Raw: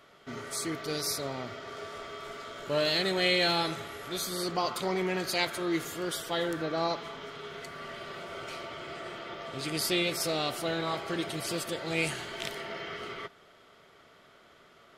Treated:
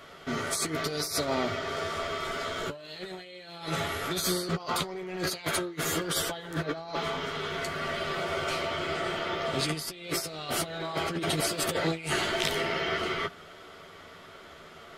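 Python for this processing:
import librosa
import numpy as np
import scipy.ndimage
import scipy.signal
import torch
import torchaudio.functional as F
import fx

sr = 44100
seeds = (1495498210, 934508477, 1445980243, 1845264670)

y = fx.over_compress(x, sr, threshold_db=-36.0, ratio=-0.5)
y = fx.chorus_voices(y, sr, voices=6, hz=0.7, base_ms=12, depth_ms=1.5, mix_pct=35)
y = y * librosa.db_to_amplitude(8.0)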